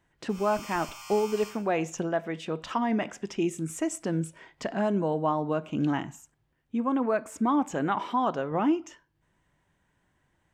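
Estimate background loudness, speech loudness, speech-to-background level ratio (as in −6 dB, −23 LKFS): −43.0 LKFS, −29.0 LKFS, 14.0 dB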